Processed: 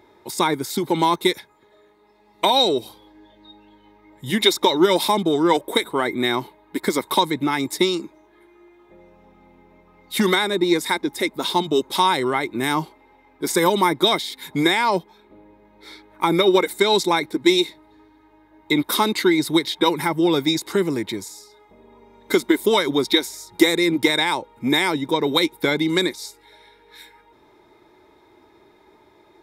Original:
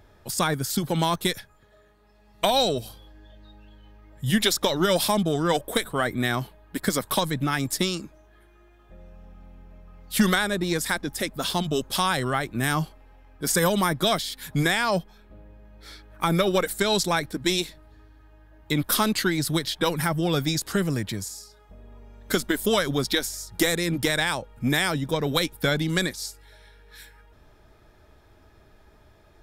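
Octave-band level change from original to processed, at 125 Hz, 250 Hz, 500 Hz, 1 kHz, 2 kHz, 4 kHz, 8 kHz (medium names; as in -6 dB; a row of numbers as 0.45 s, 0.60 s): -4.5 dB, +5.5 dB, +6.0 dB, +6.0 dB, +3.0 dB, +5.0 dB, -1.5 dB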